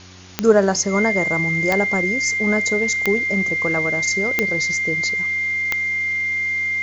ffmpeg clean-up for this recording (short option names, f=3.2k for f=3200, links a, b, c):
-af "adeclick=t=4,bandreject=f=91.9:t=h:w=4,bandreject=f=183.8:t=h:w=4,bandreject=f=275.7:t=h:w=4,bandreject=f=367.6:t=h:w=4,bandreject=f=2.1k:w=30,afwtdn=0.0089"